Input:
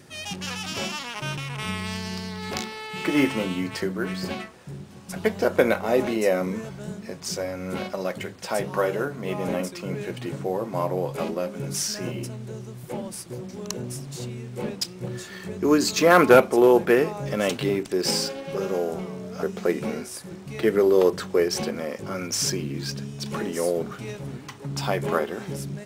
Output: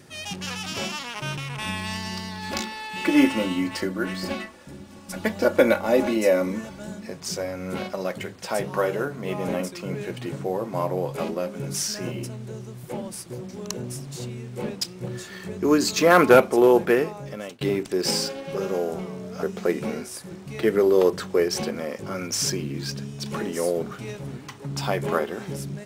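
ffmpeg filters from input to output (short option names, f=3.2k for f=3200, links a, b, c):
-filter_complex "[0:a]asettb=1/sr,asplit=3[a][b][c];[a]atrim=end=1.584[d];[b]atrim=start=1.58:end=7.07,asetpts=PTS-STARTPTS,afade=t=in:d=0.004:c=qsin,afade=t=out:st=5.486:d=0.004:c=qsin,aecho=1:1:3.5:0.67,atrim=end_sample=242109[e];[c]atrim=start=7.066[f];[d][e]acrossfade=d=0.004:c1=hsin:c2=qsin[g];[g][f]acrossfade=d=0.004:c1=qsin:c2=hsin,asplit=2[h][i];[h]atrim=end=17.61,asetpts=PTS-STARTPTS,afade=t=out:st=16.84:d=0.77:silence=0.0630957[j];[i]atrim=start=17.61,asetpts=PTS-STARTPTS,afade=t=in:d=0.004:c=hsin:silence=0.0630957[k];[j][k]concat=n=2:v=0:a=1"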